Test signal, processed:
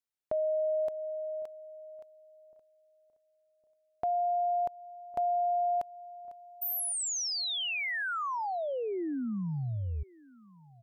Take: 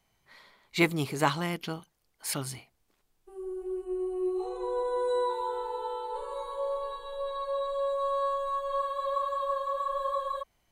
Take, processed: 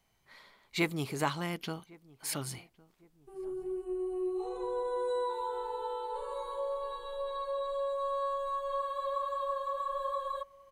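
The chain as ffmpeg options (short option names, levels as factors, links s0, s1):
-filter_complex "[0:a]asplit=2[s0][s1];[s1]acompressor=threshold=0.0224:ratio=6,volume=1.19[s2];[s0][s2]amix=inputs=2:normalize=0,asplit=2[s3][s4];[s4]adelay=1108,lowpass=f=1100:p=1,volume=0.0708,asplit=2[s5][s6];[s6]adelay=1108,lowpass=f=1100:p=1,volume=0.42,asplit=2[s7][s8];[s8]adelay=1108,lowpass=f=1100:p=1,volume=0.42[s9];[s3][s5][s7][s9]amix=inputs=4:normalize=0,volume=0.398"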